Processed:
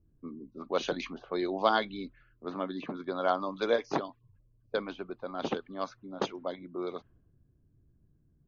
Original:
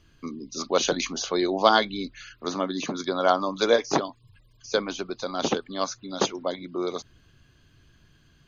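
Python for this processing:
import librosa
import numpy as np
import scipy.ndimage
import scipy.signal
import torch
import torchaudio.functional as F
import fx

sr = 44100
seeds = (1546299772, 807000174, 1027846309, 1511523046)

y = scipy.signal.sosfilt(scipy.signal.butter(2, 3300.0, 'lowpass', fs=sr, output='sos'), x)
y = fx.env_lowpass(y, sr, base_hz=360.0, full_db=-21.0)
y = y * librosa.db_to_amplitude(-7.0)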